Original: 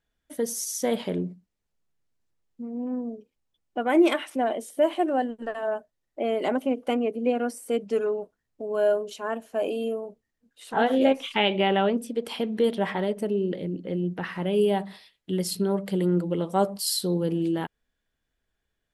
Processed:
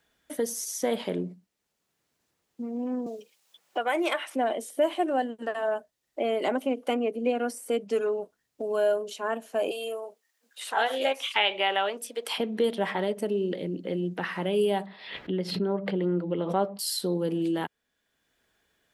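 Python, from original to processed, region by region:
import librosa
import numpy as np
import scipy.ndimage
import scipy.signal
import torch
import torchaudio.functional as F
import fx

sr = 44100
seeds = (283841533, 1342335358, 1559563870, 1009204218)

y = fx.chain(x, sr, fx.highpass(hz=170.0, slope=24),
    fx.peak_eq(hz=260.0, db=-14.5, octaves=0.97),
    fx.band_squash(depth_pct=40), at=(3.06, 4.33))
y = fx.chain(y, sr, fx.highpass(hz=620.0, slope=12),
    fx.high_shelf(hz=2600.0, db=7.5), at=(9.71, 12.38))
y = fx.chain(y, sr, fx.air_absorb(metres=360.0),
    fx.pre_swell(db_per_s=78.0), at=(14.86, 16.79))
y = fx.highpass(y, sr, hz=260.0, slope=6)
y = fx.band_squash(y, sr, depth_pct=40)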